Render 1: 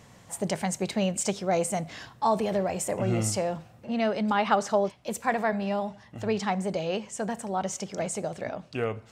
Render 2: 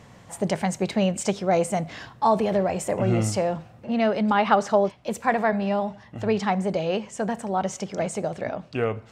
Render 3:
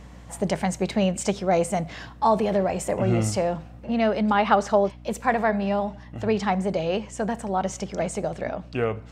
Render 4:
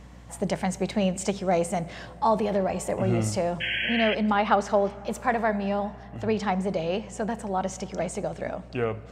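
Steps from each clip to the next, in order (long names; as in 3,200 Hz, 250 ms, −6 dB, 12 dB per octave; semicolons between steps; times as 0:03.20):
high-shelf EQ 5,200 Hz −9.5 dB; level +4.5 dB
mains hum 60 Hz, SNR 20 dB
sound drawn into the spectrogram noise, 0:03.60–0:04.15, 1,500–3,300 Hz −26 dBFS; dense smooth reverb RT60 4.2 s, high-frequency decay 0.5×, DRR 18.5 dB; level −2.5 dB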